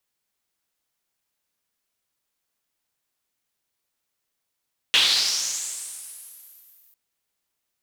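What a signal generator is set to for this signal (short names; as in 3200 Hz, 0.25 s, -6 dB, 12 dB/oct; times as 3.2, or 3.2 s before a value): swept filtered noise pink, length 2.00 s bandpass, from 3000 Hz, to 15000 Hz, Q 3.9, linear, gain ramp -38.5 dB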